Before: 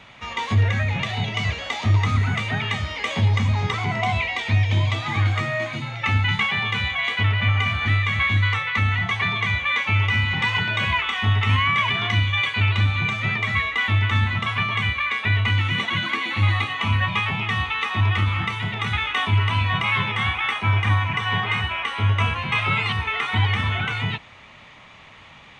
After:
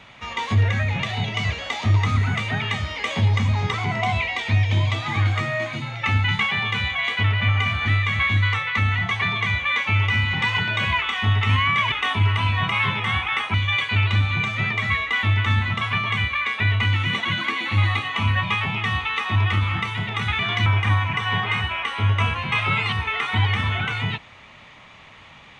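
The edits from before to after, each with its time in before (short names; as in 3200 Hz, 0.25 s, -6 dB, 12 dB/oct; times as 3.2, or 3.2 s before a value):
11.92–12.19 swap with 19.04–20.66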